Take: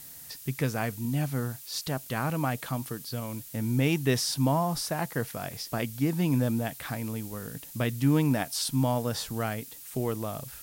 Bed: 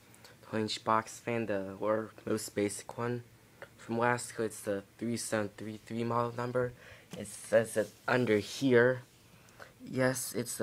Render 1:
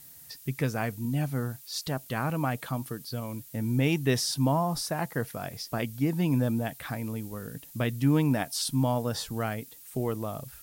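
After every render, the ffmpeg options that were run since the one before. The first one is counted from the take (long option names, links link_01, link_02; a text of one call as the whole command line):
ffmpeg -i in.wav -af "afftdn=noise_reduction=6:noise_floor=-46" out.wav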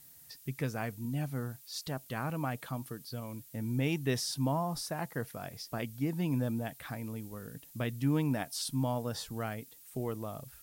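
ffmpeg -i in.wav -af "volume=-6dB" out.wav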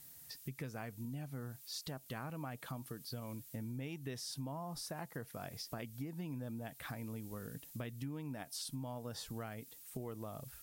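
ffmpeg -i in.wav -af "acompressor=threshold=-41dB:ratio=6" out.wav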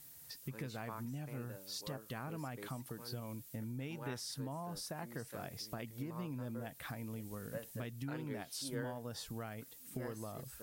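ffmpeg -i in.wav -i bed.wav -filter_complex "[1:a]volume=-19.5dB[link_01];[0:a][link_01]amix=inputs=2:normalize=0" out.wav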